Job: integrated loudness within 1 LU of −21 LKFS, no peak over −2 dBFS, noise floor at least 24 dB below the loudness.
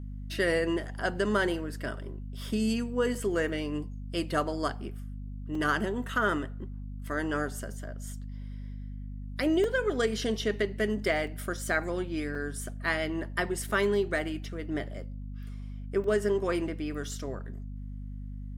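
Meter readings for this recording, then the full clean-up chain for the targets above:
number of dropouts 6; longest dropout 2.8 ms; mains hum 50 Hz; hum harmonics up to 250 Hz; level of the hum −36 dBFS; integrated loudness −31.0 LKFS; sample peak −13.5 dBFS; target loudness −21.0 LKFS
→ repair the gap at 0:03.15/0:05.55/0:09.64/0:11.27/0:12.35/0:16.04, 2.8 ms
hum removal 50 Hz, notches 5
level +10 dB

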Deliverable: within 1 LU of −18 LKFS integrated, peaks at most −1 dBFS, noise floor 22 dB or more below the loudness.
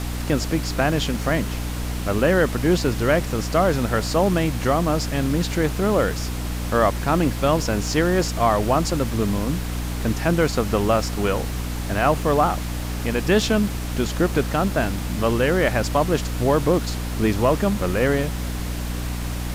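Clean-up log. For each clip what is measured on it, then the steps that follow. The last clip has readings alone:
mains hum 60 Hz; hum harmonics up to 300 Hz; level of the hum −25 dBFS; background noise floor −28 dBFS; target noise floor −44 dBFS; integrated loudness −22.0 LKFS; sample peak −6.0 dBFS; target loudness −18.0 LKFS
→ mains-hum notches 60/120/180/240/300 Hz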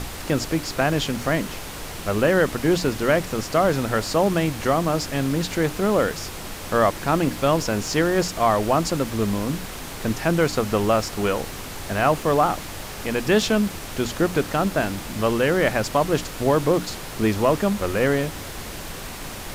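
mains hum none found; background noise floor −35 dBFS; target noise floor −45 dBFS
→ noise reduction from a noise print 10 dB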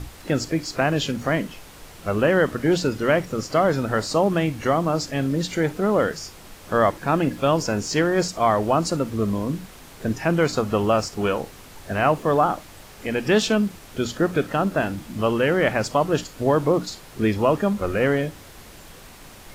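background noise floor −44 dBFS; target noise floor −45 dBFS
→ noise reduction from a noise print 6 dB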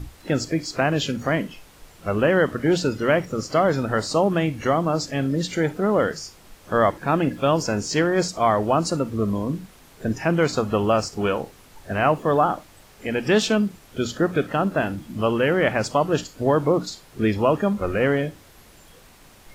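background noise floor −50 dBFS; integrated loudness −22.5 LKFS; sample peak −6.0 dBFS; target loudness −18.0 LKFS
→ level +4.5 dB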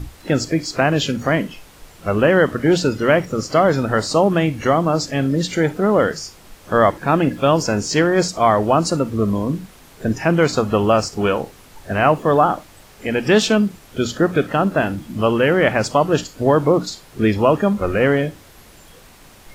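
integrated loudness −18.0 LKFS; sample peak −1.5 dBFS; background noise floor −46 dBFS

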